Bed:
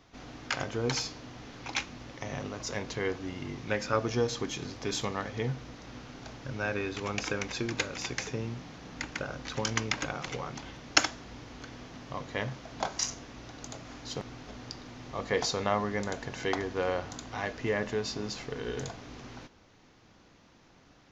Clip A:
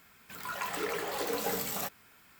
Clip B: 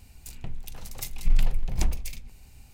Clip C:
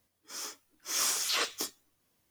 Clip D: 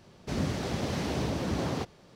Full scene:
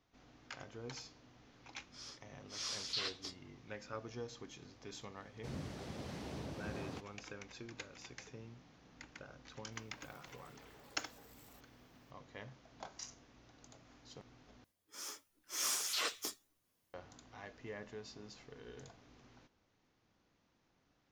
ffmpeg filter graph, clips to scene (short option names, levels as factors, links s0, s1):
-filter_complex "[3:a]asplit=2[s0][s1];[0:a]volume=0.141[s2];[s0]lowpass=f=4500:t=q:w=3.2[s3];[1:a]acompressor=threshold=0.00794:ratio=6:attack=3.2:release=140:knee=1:detection=peak[s4];[s2]asplit=2[s5][s6];[s5]atrim=end=14.644[s7];[s1]atrim=end=2.3,asetpts=PTS-STARTPTS,volume=0.473[s8];[s6]atrim=start=16.936[s9];[s3]atrim=end=2.3,asetpts=PTS-STARTPTS,volume=0.188,afade=t=in:d=0.004:c=hsin,afade=t=out:st=2.296:d=0.004:c=hsin,adelay=1640[s10];[4:a]atrim=end=2.15,asetpts=PTS-STARTPTS,volume=0.188,afade=t=in:d=0.004:c=hsin,afade=t=out:st=2.146:d=0.004:c=hsin,adelay=5160[s11];[s4]atrim=end=2.39,asetpts=PTS-STARTPTS,volume=0.15,afade=t=in:d=0.004:c=hsin,afade=t=out:st=2.386:d=0.004:c=hsin,adelay=9720[s12];[s7][s8]acrossfade=d=0.004:c1=hsin:c2=hsin[s13];[s13][s9]acrossfade=d=0.004:c1=hsin:c2=hsin[s14];[s14][s10][s11][s12]amix=inputs=4:normalize=0"